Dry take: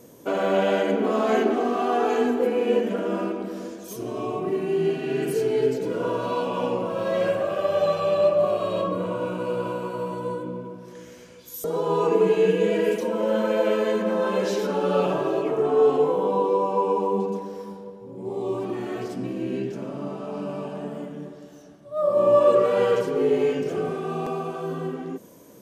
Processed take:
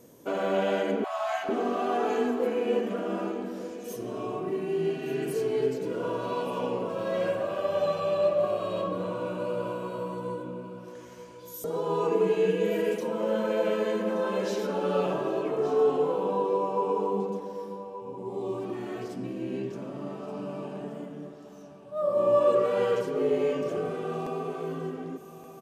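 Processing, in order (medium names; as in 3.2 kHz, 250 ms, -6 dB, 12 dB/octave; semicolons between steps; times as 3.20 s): 1.04–1.49 s: brick-wall FIR high-pass 580 Hz; delay 1175 ms -13.5 dB; trim -5 dB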